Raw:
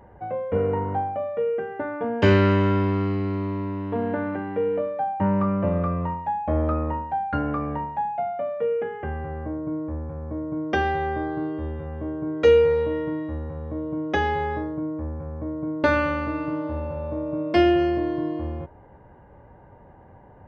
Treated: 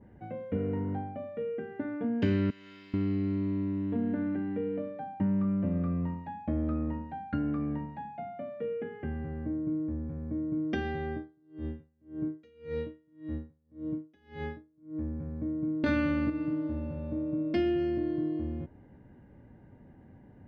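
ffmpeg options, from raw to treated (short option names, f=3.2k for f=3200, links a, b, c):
-filter_complex "[0:a]asettb=1/sr,asplit=3[a][b][c];[a]atrim=end=2.504[d];[b]atrim=start=2.5:end=2.94,asetpts=PTS-STARTPTS,afade=t=in:d=0.004:c=qsin,afade=t=out:st=0.436:d=0.004:c=qsin,aderivative[e];[c]atrim=start=2.936[f];[d][e]acrossfade=d=0.004:c1=hsin:c2=qsin[g];[g][f]acrossfade=d=0.004:c1=qsin:c2=hsin,asettb=1/sr,asplit=3[h][i][j];[h]atrim=end=11.124[k];[i]atrim=start=11.12:end=14.98,asetpts=PTS-STARTPTS,afade=t=in:d=0.004:c=qsin,afade=t=out:st=3.856:d=0.004:c=qsin,aeval=exprs='val(0)*pow(10,-37*(0.5-0.5*cos(2*PI*1.8*n/s))/20)':c=same[l];[j]atrim=start=14.976[m];[k][l]acrossfade=d=0.004:c1=hsin:c2=qsin[n];[n][m]acrossfade=d=0.004:c1=qsin:c2=hsin,asettb=1/sr,asplit=3[o][p][q];[o]atrim=end=15.864[r];[p]atrim=start=15.86:end=16.3,asetpts=PTS-STARTPTS,afade=t=in:d=0.004:c=qsin,afade=t=out:st=0.436:d=0.004:c=qsin,acontrast=69[s];[q]atrim=start=16.296[t];[r][s]acrossfade=d=0.004:c1=hsin:c2=qsin[u];[u][t]acrossfade=d=0.004:c1=qsin:c2=hsin,equalizer=f=125:t=o:w=1:g=3,equalizer=f=250:t=o:w=1:g=11,equalizer=f=500:t=o:w=1:g=-4,equalizer=f=1k:t=o:w=1:g=-10,equalizer=f=2k:t=o:w=1:g=3,equalizer=f=4k:t=o:w=1:g=5,acompressor=threshold=-21dB:ratio=2,adynamicequalizer=threshold=0.00631:dfrequency=1900:dqfactor=0.7:tfrequency=1900:tqfactor=0.7:attack=5:release=100:ratio=0.375:range=3:mode=cutabove:tftype=highshelf,volume=-7.5dB"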